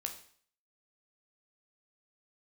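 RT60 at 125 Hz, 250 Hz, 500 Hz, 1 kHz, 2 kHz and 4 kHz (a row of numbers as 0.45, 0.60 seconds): 0.50, 0.50, 0.55, 0.55, 0.55, 0.55 seconds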